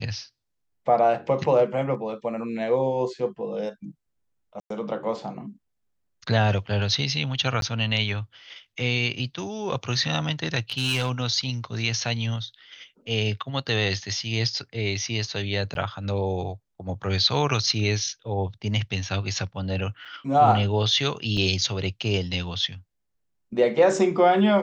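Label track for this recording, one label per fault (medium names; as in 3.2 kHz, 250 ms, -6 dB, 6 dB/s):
4.600000	4.700000	dropout 103 ms
7.610000	7.620000	dropout 12 ms
10.700000	11.100000	clipped -20 dBFS
15.740000	15.750000	dropout 12 ms
20.050000	20.060000	dropout 5.1 ms
21.370000	21.370000	dropout 3 ms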